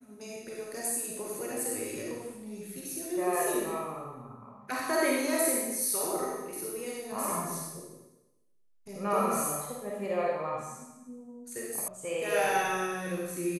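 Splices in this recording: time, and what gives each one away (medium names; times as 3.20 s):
11.88 s: sound stops dead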